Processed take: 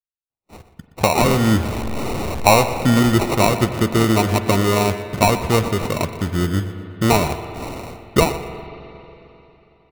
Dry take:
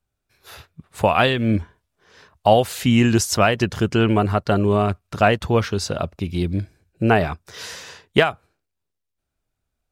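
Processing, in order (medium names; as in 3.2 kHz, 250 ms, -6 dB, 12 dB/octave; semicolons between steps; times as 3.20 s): 1.22–2.64 s: jump at every zero crossing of -23.5 dBFS; gate -40 dBFS, range -39 dB; in parallel at -2.5 dB: compression, threshold -23 dBFS, peak gain reduction 14 dB; on the sum: sample-and-hold 27×; feedback delay 121 ms, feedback 30%, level -15.5 dB; spring tank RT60 3.3 s, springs 41/45 ms, chirp 50 ms, DRR 10.5 dB; trim -1 dB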